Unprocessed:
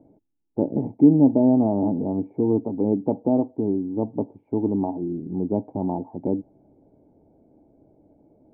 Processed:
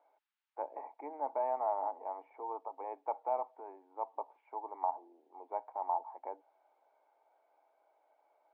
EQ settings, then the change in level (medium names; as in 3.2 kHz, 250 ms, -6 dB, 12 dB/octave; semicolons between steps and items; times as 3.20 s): inverse Chebyshev high-pass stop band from 190 Hz, stop band 80 dB; distance through air 320 m; +13.0 dB